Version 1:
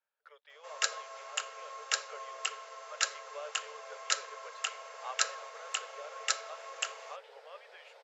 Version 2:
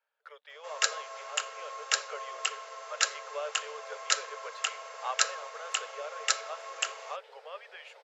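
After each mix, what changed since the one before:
speech +7.0 dB; first sound +3.5 dB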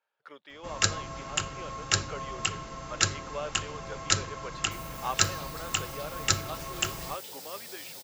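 second sound: remove LPF 1700 Hz 12 dB/oct; master: remove rippled Chebyshev high-pass 430 Hz, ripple 3 dB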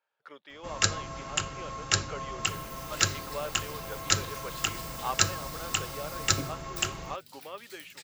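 second sound: entry -2.25 s

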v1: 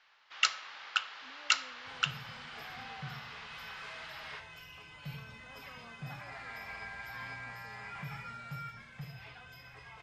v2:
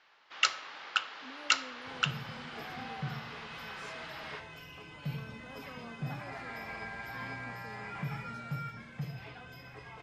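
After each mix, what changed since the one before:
speech: add tone controls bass 0 dB, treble +12 dB; master: add bell 290 Hz +11.5 dB 2.3 oct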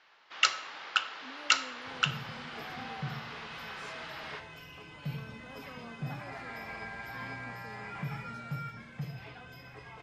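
first sound: send +11.5 dB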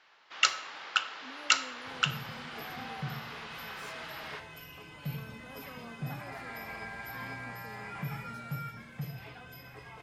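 master: remove LPF 7000 Hz 12 dB/oct

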